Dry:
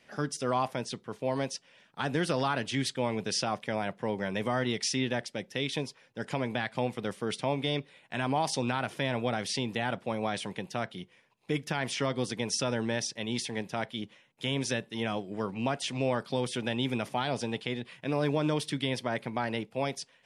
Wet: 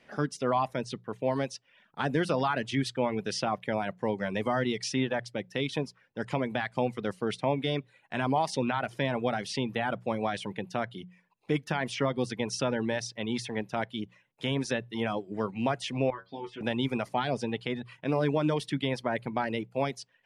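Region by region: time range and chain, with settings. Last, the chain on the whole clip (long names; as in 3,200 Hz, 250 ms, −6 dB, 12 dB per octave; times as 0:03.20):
0:16.10–0:16.61: low-pass filter 4,000 Hz + stiff-string resonator 91 Hz, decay 0.26 s, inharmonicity 0.002
whole clip: reverb reduction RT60 0.63 s; high-shelf EQ 3,800 Hz −10 dB; mains-hum notches 60/120/180 Hz; level +3 dB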